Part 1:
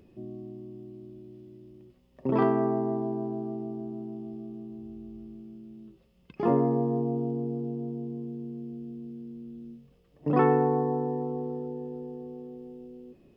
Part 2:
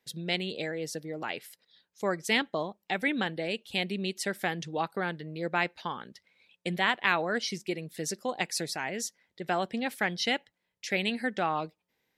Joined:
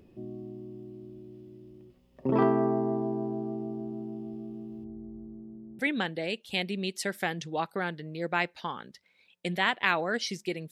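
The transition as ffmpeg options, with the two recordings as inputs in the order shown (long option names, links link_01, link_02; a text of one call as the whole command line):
ffmpeg -i cue0.wav -i cue1.wav -filter_complex "[0:a]asettb=1/sr,asplit=3[link_01][link_02][link_03];[link_01]atrim=end=4.844[link_04];[link_02]atrim=start=4.84:end=5.79,asetpts=PTS-STARTPTS,afade=type=in:duration=0.004:curve=qsin,afade=type=out:start_time=0.946:duration=0.004:curve=qsin,lowpass=frequency=1100:width=0.5412,lowpass=frequency=1100:width=1.3066[link_05];[link_03]atrim=start=5.786[link_06];[link_04][link_05]acrossfade=duration=0.004:curve1=hsin:curve2=qsin[link_07];[link_07][link_06]acrossfade=duration=0.004:curve1=qsin:curve2=hsin,apad=whole_dur=10.71,atrim=end=10.71,atrim=end=5.792[link_08];[1:a]atrim=start=2.998:end=7.92[link_09];[link_08][link_09]acrossfade=duration=0.004:curve1=hsin:curve2=hsin" out.wav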